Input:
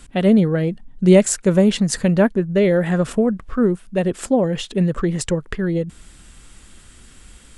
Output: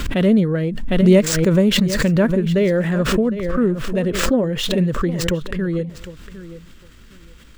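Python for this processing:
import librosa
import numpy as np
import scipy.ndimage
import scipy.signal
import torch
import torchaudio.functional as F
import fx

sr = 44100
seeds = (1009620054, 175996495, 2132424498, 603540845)

y = scipy.signal.medfilt(x, 5)
y = fx.peak_eq(y, sr, hz=770.0, db=-9.5, octaves=0.28)
y = fx.echo_feedback(y, sr, ms=756, feedback_pct=17, wet_db=-15.0)
y = fx.pre_swell(y, sr, db_per_s=41.0)
y = F.gain(torch.from_numpy(y), -1.0).numpy()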